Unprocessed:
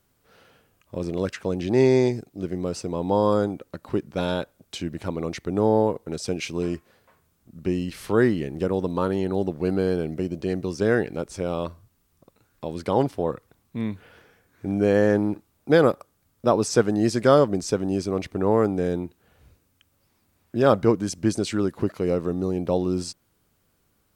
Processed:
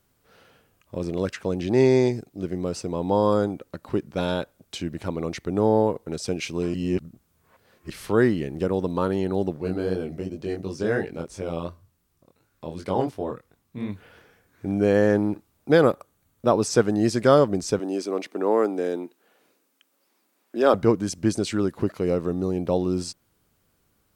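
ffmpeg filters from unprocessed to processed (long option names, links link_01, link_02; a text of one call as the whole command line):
ffmpeg -i in.wav -filter_complex "[0:a]asplit=3[link_01][link_02][link_03];[link_01]afade=type=out:start_time=9.56:duration=0.02[link_04];[link_02]flanger=delay=20:depth=4.4:speed=2.8,afade=type=in:start_time=9.56:duration=0.02,afade=type=out:start_time=13.88:duration=0.02[link_05];[link_03]afade=type=in:start_time=13.88:duration=0.02[link_06];[link_04][link_05][link_06]amix=inputs=3:normalize=0,asettb=1/sr,asplit=3[link_07][link_08][link_09];[link_07]atrim=end=15.884[link_10];[link_08]atrim=start=15.88:end=16.5,asetpts=PTS-STARTPTS,afade=type=in:duration=0.004:curve=qsin,afade=type=out:start_time=0.616:duration=0.004:curve=qsin,bandreject=frequency=5100:width=8.3[link_11];[link_09]atrim=start=16.496[link_12];[link_10][link_11]acrossfade=duration=0.004:curve1=hsin:curve2=qsin[link_13];[link_13][link_12]acrossfade=duration=0.004:curve1=qsin:curve2=hsin,asettb=1/sr,asplit=3[link_14][link_15][link_16];[link_14]atrim=end=17.794[link_17];[link_15]atrim=start=17.79:end=20.74,asetpts=PTS-STARTPTS,afade=type=in:duration=0.004:curve=qsin,afade=type=out:start_time=2.946:duration=0.004:curve=qsin,highpass=frequency=260:width=0.5412,highpass=frequency=260:width=1.3066[link_18];[link_16]atrim=start=20.736[link_19];[link_17][link_18]acrossfade=duration=0.004:curve1=hsin:curve2=qsin[link_20];[link_20][link_19]acrossfade=duration=0.004:curve1=qsin:curve2=hsin,asplit=3[link_21][link_22][link_23];[link_21]atrim=end=6.742[link_24];[link_22]atrim=start=6.738:end=7.902,asetpts=PTS-STARTPTS,areverse[link_25];[link_23]atrim=start=7.898[link_26];[link_24][link_25]acrossfade=duration=0.004:curve1=hsin:curve2=hsin[link_27];[link_27][link_26]acrossfade=duration=0.004:curve1=hsin:curve2=hsin" out.wav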